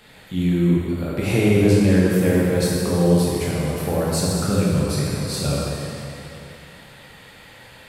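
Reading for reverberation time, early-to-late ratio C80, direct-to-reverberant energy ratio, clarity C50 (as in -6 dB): 2.8 s, -1.5 dB, -6.0 dB, -3.0 dB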